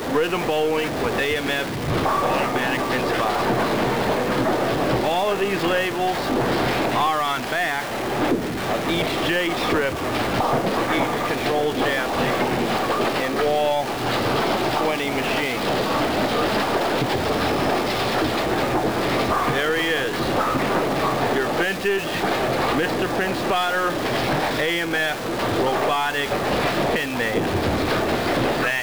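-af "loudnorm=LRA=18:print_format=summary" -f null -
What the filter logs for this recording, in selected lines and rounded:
Input Integrated:    -21.6 LUFS
Input True Peak:     -10.2 dBTP
Input LRA:             0.7 LU
Input Threshold:     -31.6 LUFS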